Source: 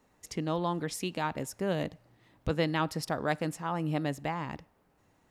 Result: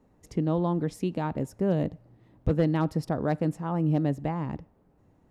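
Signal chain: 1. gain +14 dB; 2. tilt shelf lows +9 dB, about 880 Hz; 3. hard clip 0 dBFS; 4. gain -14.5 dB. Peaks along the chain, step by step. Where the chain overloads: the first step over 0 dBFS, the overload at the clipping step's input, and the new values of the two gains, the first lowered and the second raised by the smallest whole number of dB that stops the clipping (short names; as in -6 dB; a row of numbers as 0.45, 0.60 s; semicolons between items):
-0.5, +3.5, 0.0, -14.5 dBFS; step 2, 3.5 dB; step 1 +10 dB, step 4 -10.5 dB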